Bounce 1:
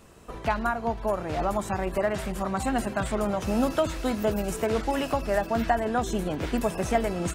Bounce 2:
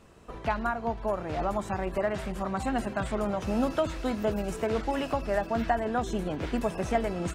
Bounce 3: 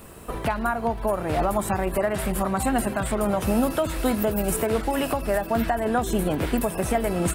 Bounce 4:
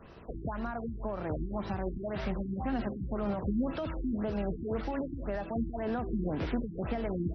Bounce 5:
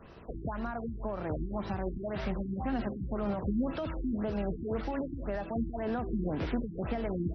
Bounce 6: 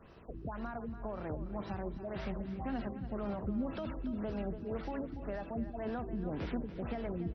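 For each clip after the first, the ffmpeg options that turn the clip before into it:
-af "highshelf=f=8300:g=-11.5,volume=0.75"
-filter_complex "[0:a]asplit=2[s0][s1];[s1]acompressor=threshold=0.0158:ratio=6,volume=0.891[s2];[s0][s2]amix=inputs=2:normalize=0,alimiter=limit=0.126:level=0:latency=1:release=208,aexciter=amount=6.9:drive=4.7:freq=8700,volume=1.78"
-filter_complex "[0:a]acrossover=split=320|5500[s0][s1][s2];[s1]alimiter=limit=0.075:level=0:latency=1:release=40[s3];[s0][s3][s2]amix=inputs=3:normalize=0,afftfilt=real='re*lt(b*sr/1024,350*pow(6200/350,0.5+0.5*sin(2*PI*1.9*pts/sr)))':imag='im*lt(b*sr/1024,350*pow(6200/350,0.5+0.5*sin(2*PI*1.9*pts/sr)))':win_size=1024:overlap=0.75,volume=0.447"
-af anull
-af "aecho=1:1:287|574|861:0.251|0.0779|0.0241,volume=0.562"

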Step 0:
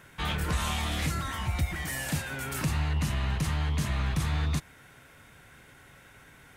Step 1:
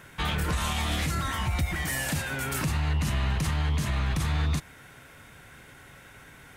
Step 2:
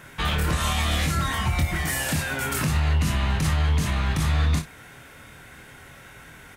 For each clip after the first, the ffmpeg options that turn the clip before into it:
-af "alimiter=limit=0.0708:level=0:latency=1:release=42,volume=1.58"
-af "aecho=1:1:25|57:0.531|0.237,volume=1.41"

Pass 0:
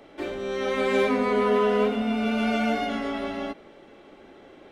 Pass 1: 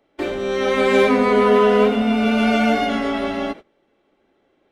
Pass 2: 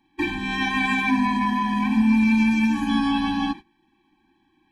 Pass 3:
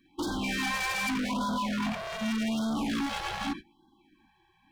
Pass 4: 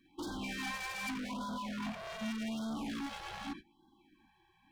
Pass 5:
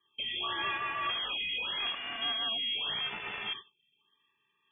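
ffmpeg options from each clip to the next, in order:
-af "agate=range=0.0794:threshold=0.01:ratio=16:detection=peak,volume=2.37"
-af "equalizer=f=2300:w=3:g=5,alimiter=level_in=3.35:limit=0.891:release=50:level=0:latency=1,afftfilt=real='re*eq(mod(floor(b*sr/1024/380),2),0)':imag='im*eq(mod(floor(b*sr/1024/380),2),0)':win_size=1024:overlap=0.75,volume=0.398"
-af "volume=31.6,asoftclip=hard,volume=0.0316,afftfilt=real='re*(1-between(b*sr/1024,230*pow(2300/230,0.5+0.5*sin(2*PI*0.84*pts/sr))/1.41,230*pow(2300/230,0.5+0.5*sin(2*PI*0.84*pts/sr))*1.41))':imag='im*(1-between(b*sr/1024,230*pow(2300/230,0.5+0.5*sin(2*PI*0.84*pts/sr))/1.41,230*pow(2300/230,0.5+0.5*sin(2*PI*0.84*pts/sr))*1.41))':win_size=1024:overlap=0.75,volume=1.19"
-af "alimiter=level_in=2.37:limit=0.0631:level=0:latency=1:release=351,volume=0.422,volume=0.708"
-af "aemphasis=mode=production:type=75kf,lowpass=f=3000:t=q:w=0.5098,lowpass=f=3000:t=q:w=0.6013,lowpass=f=3000:t=q:w=0.9,lowpass=f=3000:t=q:w=2.563,afreqshift=-3500,agate=range=0.251:threshold=0.00158:ratio=16:detection=peak,volume=1.68"

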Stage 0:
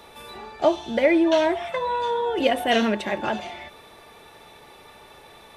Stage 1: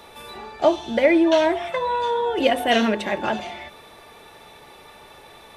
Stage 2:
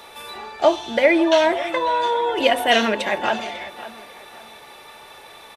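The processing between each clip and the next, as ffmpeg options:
-af "bandreject=f=50.98:t=h:w=4,bandreject=f=101.96:t=h:w=4,bandreject=f=152.94:t=h:w=4,bandreject=f=203.92:t=h:w=4,bandreject=f=254.9:t=h:w=4,bandreject=f=305.88:t=h:w=4,bandreject=f=356.86:t=h:w=4,bandreject=f=407.84:t=h:w=4,bandreject=f=458.82:t=h:w=4,volume=1.26"
-filter_complex "[0:a]lowshelf=f=380:g=-10.5,asplit=2[s0][s1];[s1]adelay=547,lowpass=f=3800:p=1,volume=0.168,asplit=2[s2][s3];[s3]adelay=547,lowpass=f=3800:p=1,volume=0.34,asplit=2[s4][s5];[s5]adelay=547,lowpass=f=3800:p=1,volume=0.34[s6];[s0][s2][s4][s6]amix=inputs=4:normalize=0,volume=1.68"

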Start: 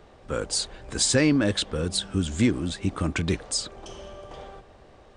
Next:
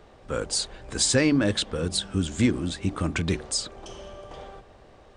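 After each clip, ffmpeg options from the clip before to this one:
-af "bandreject=f=74.96:t=h:w=4,bandreject=f=149.92:t=h:w=4,bandreject=f=224.88:t=h:w=4,bandreject=f=299.84:t=h:w=4,bandreject=f=374.8:t=h:w=4"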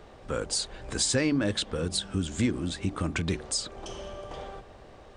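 -af "acompressor=threshold=0.0158:ratio=1.5,volume=1.26"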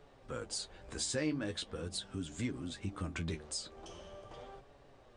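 -af "flanger=delay=7:depth=6.2:regen=37:speed=0.42:shape=sinusoidal,volume=0.473"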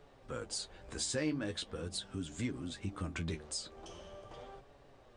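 -af "asoftclip=type=hard:threshold=0.0531"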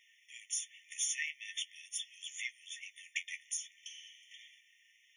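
-af "afftfilt=real='re*eq(mod(floor(b*sr/1024/1800),2),1)':imag='im*eq(mod(floor(b*sr/1024/1800),2),1)':win_size=1024:overlap=0.75,volume=2.51"

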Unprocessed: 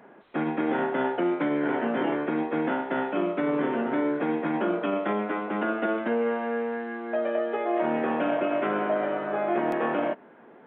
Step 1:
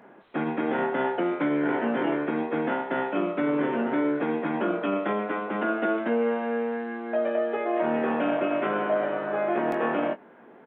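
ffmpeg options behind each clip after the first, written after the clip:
-filter_complex "[0:a]asplit=2[s0][s1];[s1]adelay=21,volume=0.316[s2];[s0][s2]amix=inputs=2:normalize=0"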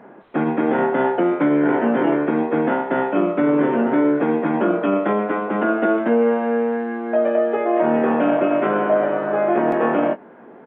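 -af "highshelf=f=2400:g=-12,volume=2.66"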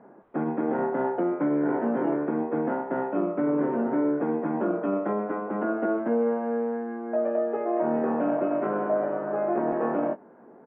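-af "lowpass=1300,volume=0.422"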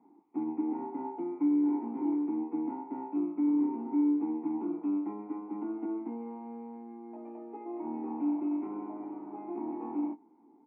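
-filter_complex "[0:a]asplit=3[s0][s1][s2];[s0]bandpass=f=300:t=q:w=8,volume=1[s3];[s1]bandpass=f=870:t=q:w=8,volume=0.501[s4];[s2]bandpass=f=2240:t=q:w=8,volume=0.355[s5];[s3][s4][s5]amix=inputs=3:normalize=0"

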